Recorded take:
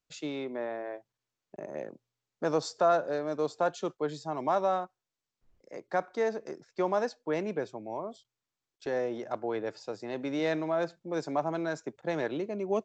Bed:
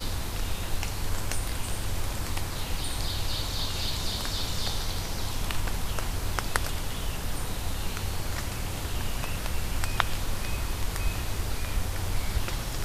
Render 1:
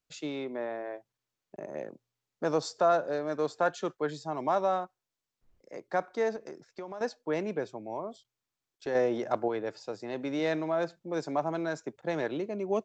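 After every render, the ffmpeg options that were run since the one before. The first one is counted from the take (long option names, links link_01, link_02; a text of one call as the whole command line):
ffmpeg -i in.wav -filter_complex "[0:a]asettb=1/sr,asplit=3[link_01][link_02][link_03];[link_01]atrim=end=3.294[link_04];[link_02]atrim=start=3.29:end=4.11,asetpts=PTS-STARTPTS,afade=type=in:duration=0.004:curve=qsin,afade=type=out:start_time=0.816:duration=0.004:curve=qsin,equalizer=frequency=1700:width=2.3:gain=7.5[link_05];[link_03]atrim=start=4.106[link_06];[link_04][link_05]acrossfade=duration=0.004:curve1=hsin:curve2=qsin[link_07];[link_07][link_06]acrossfade=duration=0.004:curve1=qsin:curve2=hsin,asettb=1/sr,asplit=3[link_08][link_09][link_10];[link_08]atrim=end=6.364[link_11];[link_09]atrim=start=6.36:end=7.01,asetpts=PTS-STARTPTS,afade=type=in:duration=0.004:curve=qsin,afade=type=out:start_time=0.646:duration=0.004:curve=qsin,acompressor=threshold=-37dB:ratio=6:attack=3.2:release=140:knee=1:detection=peak[link_12];[link_10]atrim=start=7.006[link_13];[link_11][link_12]acrossfade=duration=0.004:curve1=hsin:curve2=qsin[link_14];[link_14][link_13]acrossfade=duration=0.004:curve1=qsin:curve2=hsin,asplit=3[link_15][link_16][link_17];[link_15]atrim=end=8.952[link_18];[link_16]atrim=start=8.948:end=9.482,asetpts=PTS-STARTPTS,volume=5dB[link_19];[link_17]atrim=start=9.478[link_20];[link_18][link_19]acrossfade=duration=0.004:curve1=hsin:curve2=hsin[link_21];[link_21][link_20]acrossfade=duration=0.004:curve1=hsin:curve2=hsin" out.wav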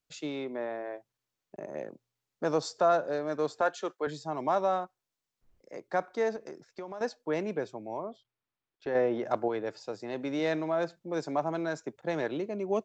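ffmpeg -i in.wav -filter_complex "[0:a]asettb=1/sr,asplit=3[link_01][link_02][link_03];[link_01]atrim=end=3.614[link_04];[link_02]atrim=start=3.61:end=4.07,asetpts=PTS-STARTPTS,afade=type=in:duration=0.004:curve=qsin,afade=type=out:start_time=0.456:duration=0.004:curve=qsin,highpass=320[link_05];[link_03]atrim=start=4.066[link_06];[link_04][link_05]acrossfade=duration=0.004:curve1=hsin:curve2=qsin[link_07];[link_07][link_06]acrossfade=duration=0.004:curve1=qsin:curve2=hsin,asettb=1/sr,asplit=3[link_08][link_09][link_10];[link_08]atrim=end=8.034[link_11];[link_09]atrim=start=8.03:end=9.25,asetpts=PTS-STARTPTS,afade=type=in:duration=0.004:curve=qsin,afade=type=out:start_time=1.216:duration=0.004:curve=qsin,lowpass=3100[link_12];[link_10]atrim=start=9.246[link_13];[link_11][link_12]acrossfade=duration=0.004:curve1=hsin:curve2=qsin[link_14];[link_14][link_13]acrossfade=duration=0.004:curve1=qsin:curve2=hsin" out.wav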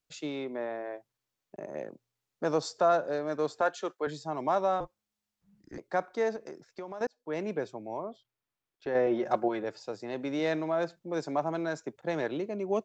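ffmpeg -i in.wav -filter_complex "[0:a]asettb=1/sr,asplit=3[link_01][link_02][link_03];[link_01]atrim=end=4.804[link_04];[link_02]atrim=start=4.8:end=5.78,asetpts=PTS-STARTPTS,afade=type=in:duration=0.004:curve=qsin,afade=type=out:start_time=0.976:duration=0.004:curve=qsin,afreqshift=-210[link_05];[link_03]atrim=start=5.776[link_06];[link_04][link_05]acrossfade=duration=0.004:curve1=hsin:curve2=qsin[link_07];[link_07][link_06]acrossfade=duration=0.004:curve1=qsin:curve2=hsin,asettb=1/sr,asplit=3[link_08][link_09][link_10];[link_08]atrim=end=9.064[link_11];[link_09]atrim=start=9.06:end=9.64,asetpts=PTS-STARTPTS,afade=type=in:duration=0.004:curve=qsin,afade=type=out:start_time=0.576:duration=0.004:curve=qsin,aecho=1:1:5.5:0.65,atrim=end_sample=25578[link_12];[link_10]atrim=start=9.636[link_13];[link_11][link_12]acrossfade=duration=0.004:curve1=hsin:curve2=qsin[link_14];[link_14][link_13]acrossfade=duration=0.004:curve1=qsin:curve2=hsin,asplit=2[link_15][link_16];[link_15]atrim=end=7.07,asetpts=PTS-STARTPTS,afade=type=out:start_time=7.066:duration=0.004:curve=hsin[link_17];[link_16]atrim=start=7.07,asetpts=PTS-STARTPTS,afade=type=in:duration=0.4[link_18];[link_17][link_18]concat=n=2:v=0:a=1" out.wav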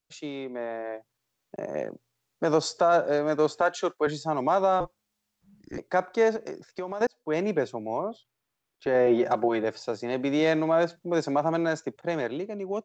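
ffmpeg -i in.wav -af "alimiter=limit=-20dB:level=0:latency=1,dynaudnorm=framelen=110:gausssize=17:maxgain=7dB" out.wav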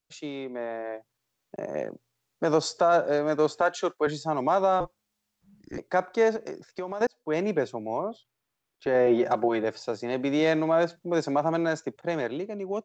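ffmpeg -i in.wav -af anull out.wav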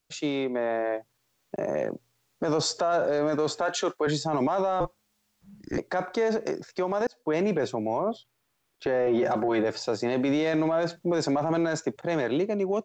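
ffmpeg -i in.wav -af "acontrast=88,alimiter=limit=-18dB:level=0:latency=1:release=11" out.wav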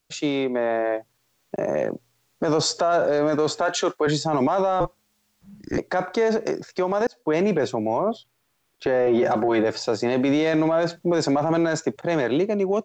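ffmpeg -i in.wav -af "volume=4.5dB" out.wav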